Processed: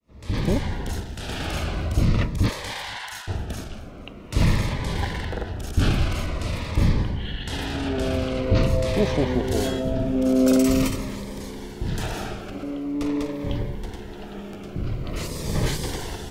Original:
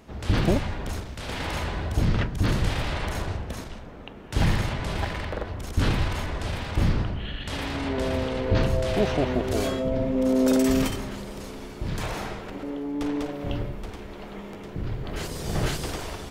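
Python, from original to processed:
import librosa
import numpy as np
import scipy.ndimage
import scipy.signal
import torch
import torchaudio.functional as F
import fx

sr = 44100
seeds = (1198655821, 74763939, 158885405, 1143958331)

y = fx.fade_in_head(x, sr, length_s=0.67)
y = fx.highpass(y, sr, hz=fx.line((2.48, 430.0), (3.27, 1100.0)), slope=24, at=(2.48, 3.27), fade=0.02)
y = fx.echo_feedback(y, sr, ms=239, feedback_pct=45, wet_db=-19.5)
y = fx.notch_cascade(y, sr, direction='falling', hz=0.46)
y = y * 10.0 ** (3.0 / 20.0)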